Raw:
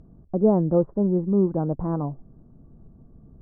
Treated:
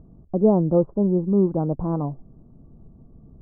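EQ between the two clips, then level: low-pass 1.3 kHz 24 dB/octave; +1.5 dB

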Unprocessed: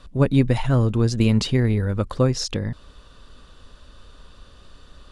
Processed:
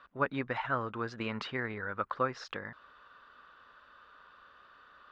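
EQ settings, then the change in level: band-pass filter 1.4 kHz, Q 2.3; distance through air 120 m; +3.5 dB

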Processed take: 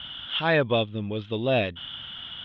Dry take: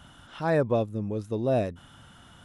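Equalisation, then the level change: resonant low-pass 3.3 kHz, resonance Q 9.4; distance through air 140 m; peaking EQ 2.6 kHz +10.5 dB 1.9 oct; 0.0 dB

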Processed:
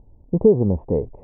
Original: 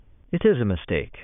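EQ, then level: elliptic low-pass 910 Hz, stop band 40 dB; +4.5 dB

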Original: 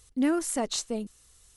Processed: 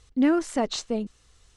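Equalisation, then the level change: distance through air 110 m; +4.5 dB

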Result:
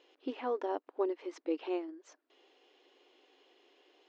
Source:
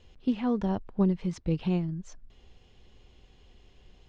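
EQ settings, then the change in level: dynamic bell 3.8 kHz, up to -4 dB, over -57 dBFS, Q 1.1; brick-wall FIR high-pass 270 Hz; distance through air 100 m; 0.0 dB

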